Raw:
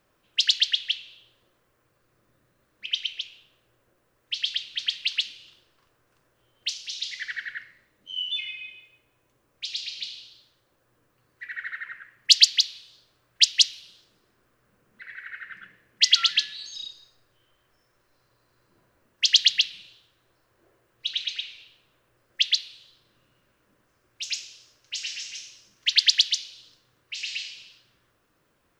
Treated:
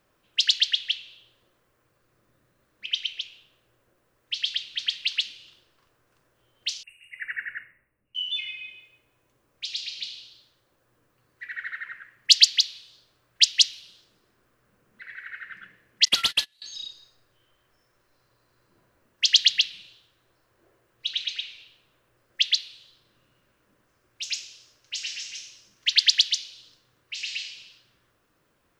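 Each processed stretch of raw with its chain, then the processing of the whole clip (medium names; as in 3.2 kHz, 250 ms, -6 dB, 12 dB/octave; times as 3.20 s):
6.83–8.15 s: brick-wall FIR band-stop 2.9–8 kHz + three bands expanded up and down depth 70%
16.05–16.62 s: CVSD coder 64 kbps + gate -31 dBFS, range -26 dB
whole clip: none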